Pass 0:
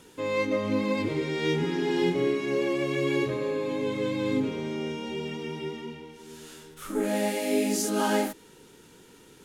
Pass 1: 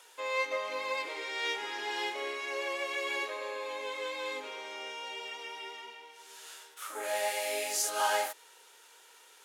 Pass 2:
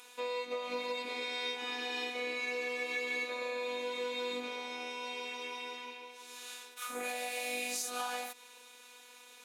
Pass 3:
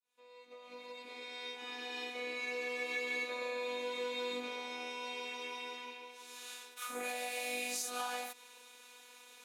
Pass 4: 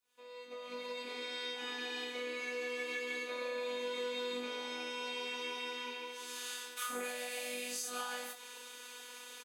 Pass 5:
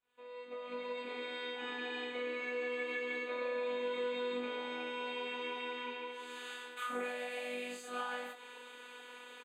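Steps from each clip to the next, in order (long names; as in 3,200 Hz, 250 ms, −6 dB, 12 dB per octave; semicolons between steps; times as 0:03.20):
high-pass filter 630 Hz 24 dB per octave
downward compressor 4 to 1, threshold −36 dBFS, peak gain reduction 10 dB; hollow resonant body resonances 210/2,400/3,800 Hz, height 14 dB, ringing for 30 ms; phases set to zero 246 Hz; level +2.5 dB
fade in at the beginning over 2.89 s; level −1.5 dB
downward compressor 4 to 1, threshold −42 dBFS, peak gain reduction 9.5 dB; on a send: ambience of single reflections 25 ms −5.5 dB, 59 ms −13.5 dB; on the sum: level +6.5 dB
moving average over 8 samples; level +2.5 dB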